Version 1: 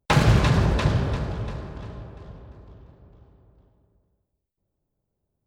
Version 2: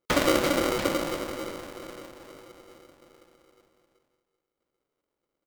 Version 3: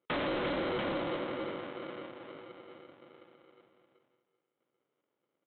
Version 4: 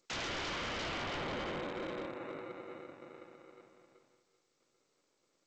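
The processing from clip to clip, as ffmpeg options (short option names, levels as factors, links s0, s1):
-filter_complex "[0:a]equalizer=f=630:t=o:w=0.28:g=2.5,asplit=2[s0][s1];[s1]adelay=1166,volume=0.0501,highshelf=f=4000:g=-26.2[s2];[s0][s2]amix=inputs=2:normalize=0,aeval=exprs='val(0)*sgn(sin(2*PI*430*n/s))':c=same,volume=0.501"
-af "highpass=f=110:w=0.5412,highpass=f=110:w=1.3066,alimiter=limit=0.15:level=0:latency=1:release=11,aresample=8000,asoftclip=type=tanh:threshold=0.0355,aresample=44100"
-af "asuperstop=centerf=3200:order=4:qfactor=4.2,aeval=exprs='0.0133*(abs(mod(val(0)/0.0133+3,4)-2)-1)':c=same,volume=1.58" -ar 16000 -c:a g722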